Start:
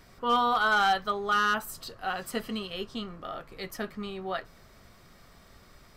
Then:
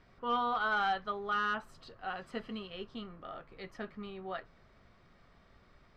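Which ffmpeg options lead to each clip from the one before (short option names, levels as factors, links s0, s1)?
-af "lowpass=3300,volume=0.447"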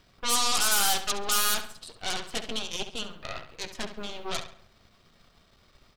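-filter_complex "[0:a]aeval=exprs='0.0596*(cos(1*acos(clip(val(0)/0.0596,-1,1)))-cos(1*PI/2))+0.0237*(cos(8*acos(clip(val(0)/0.0596,-1,1)))-cos(8*PI/2))':c=same,aexciter=amount=1.9:drive=8.9:freq=2800,asplit=2[s0][s1];[s1]adelay=68,lowpass=f=4400:p=1,volume=0.335,asplit=2[s2][s3];[s3]adelay=68,lowpass=f=4400:p=1,volume=0.43,asplit=2[s4][s5];[s5]adelay=68,lowpass=f=4400:p=1,volume=0.43,asplit=2[s6][s7];[s7]adelay=68,lowpass=f=4400:p=1,volume=0.43,asplit=2[s8][s9];[s9]adelay=68,lowpass=f=4400:p=1,volume=0.43[s10];[s0][s2][s4][s6][s8][s10]amix=inputs=6:normalize=0"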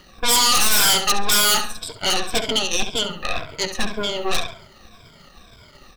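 -filter_complex "[0:a]afftfilt=real='re*pow(10,14/40*sin(2*PI*(1.7*log(max(b,1)*sr/1024/100)/log(2)-(-1.9)*(pts-256)/sr)))':imag='im*pow(10,14/40*sin(2*PI*(1.7*log(max(b,1)*sr/1024/100)/log(2)-(-1.9)*(pts-256)/sr)))':win_size=1024:overlap=0.75,asplit=2[s0][s1];[s1]aeval=exprs='0.376*sin(PI/2*4.47*val(0)/0.376)':c=same,volume=0.266[s2];[s0][s2]amix=inputs=2:normalize=0,volume=1.26"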